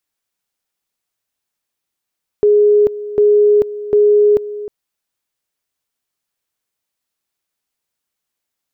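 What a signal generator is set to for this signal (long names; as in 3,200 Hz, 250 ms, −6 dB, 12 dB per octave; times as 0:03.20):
tone at two levels in turn 416 Hz −7 dBFS, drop 15.5 dB, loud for 0.44 s, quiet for 0.31 s, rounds 3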